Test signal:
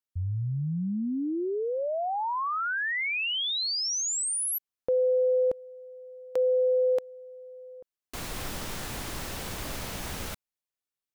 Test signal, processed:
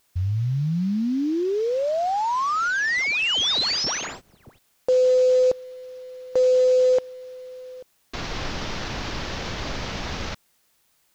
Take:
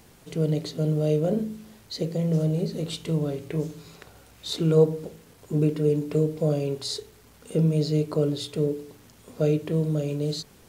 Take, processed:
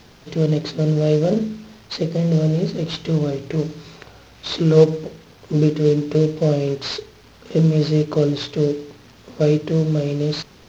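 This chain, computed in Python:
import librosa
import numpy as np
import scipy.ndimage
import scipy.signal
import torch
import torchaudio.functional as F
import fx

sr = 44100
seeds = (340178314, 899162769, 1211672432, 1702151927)

y = fx.cvsd(x, sr, bps=32000)
y = fx.quant_dither(y, sr, seeds[0], bits=12, dither='triangular')
y = y * 10.0 ** (6.5 / 20.0)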